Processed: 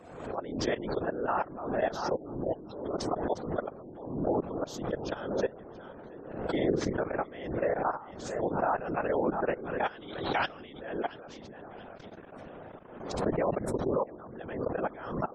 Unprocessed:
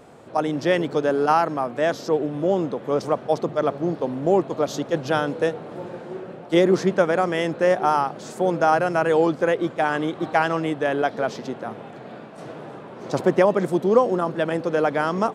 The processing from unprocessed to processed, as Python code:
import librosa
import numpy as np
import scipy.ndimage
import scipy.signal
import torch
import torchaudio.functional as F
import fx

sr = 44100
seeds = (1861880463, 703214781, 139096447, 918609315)

y = fx.peak_eq(x, sr, hz=3800.0, db=12.5, octaves=1.5, at=(9.83, 10.73))
y = fx.echo_feedback(y, sr, ms=680, feedback_pct=32, wet_db=-13.0)
y = fx.level_steps(y, sr, step_db=19)
y = fx.spec_gate(y, sr, threshold_db=-30, keep='strong')
y = fx.high_shelf_res(y, sr, hz=2500.0, db=9.5, q=3.0, at=(2.33, 2.88))
y = fx.doubler(y, sr, ms=48.0, db=-4.0, at=(6.2, 6.93))
y = fx.whisperise(y, sr, seeds[0])
y = fx.pre_swell(y, sr, db_per_s=58.0)
y = y * librosa.db_to_amplitude(-8.5)